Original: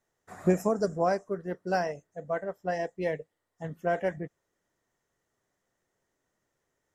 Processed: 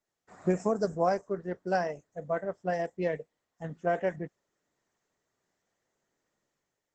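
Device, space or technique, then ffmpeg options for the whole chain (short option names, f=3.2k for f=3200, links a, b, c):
video call: -filter_complex "[0:a]asplit=3[a][b][c];[a]afade=t=out:st=2.09:d=0.02[d];[b]equalizer=f=61:w=0.33:g=4.5,afade=t=in:st=2.09:d=0.02,afade=t=out:st=3.07:d=0.02[e];[c]afade=t=in:st=3.07:d=0.02[f];[d][e][f]amix=inputs=3:normalize=0,highpass=110,dynaudnorm=f=140:g=7:m=7.5dB,volume=-7.5dB" -ar 48000 -c:a libopus -b:a 12k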